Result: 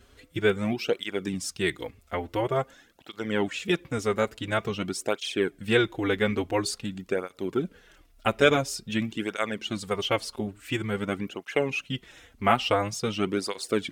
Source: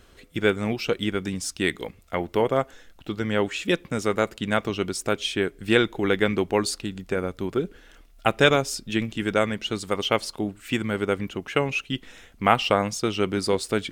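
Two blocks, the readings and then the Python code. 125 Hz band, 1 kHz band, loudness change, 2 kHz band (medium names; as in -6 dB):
-3.0 dB, -3.5 dB, -3.0 dB, -3.0 dB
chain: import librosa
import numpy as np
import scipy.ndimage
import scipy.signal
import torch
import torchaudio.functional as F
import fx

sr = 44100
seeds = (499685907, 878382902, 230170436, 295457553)

y = fx.flanger_cancel(x, sr, hz=0.48, depth_ms=6.6)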